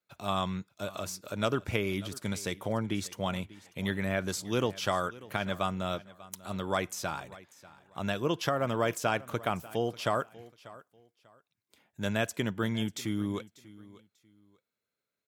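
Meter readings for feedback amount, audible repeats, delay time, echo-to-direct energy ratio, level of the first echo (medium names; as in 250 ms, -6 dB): 25%, 2, 592 ms, -19.0 dB, -19.5 dB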